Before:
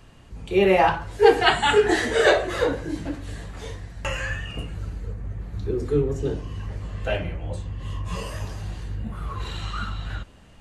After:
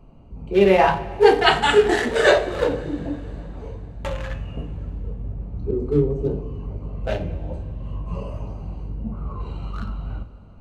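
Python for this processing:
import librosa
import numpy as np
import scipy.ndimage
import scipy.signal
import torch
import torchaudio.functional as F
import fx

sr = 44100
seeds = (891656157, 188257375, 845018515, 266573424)

y = fx.wiener(x, sr, points=25)
y = fx.rev_double_slope(y, sr, seeds[0], early_s=0.35, late_s=3.2, knee_db=-17, drr_db=6.5)
y = y * 10.0 ** (2.0 / 20.0)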